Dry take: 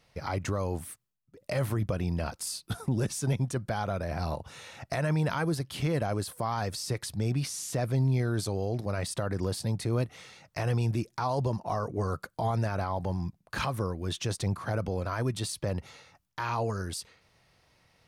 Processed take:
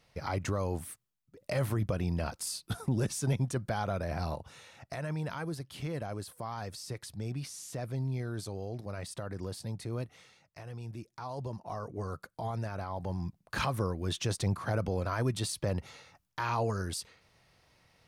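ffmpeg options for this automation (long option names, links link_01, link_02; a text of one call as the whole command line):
ffmpeg -i in.wav -af "volume=14.5dB,afade=type=out:start_time=4.14:duration=0.56:silence=0.473151,afade=type=out:start_time=10.15:duration=0.5:silence=0.375837,afade=type=in:start_time=10.65:duration=1.29:silence=0.334965,afade=type=in:start_time=12.85:duration=0.72:silence=0.473151" out.wav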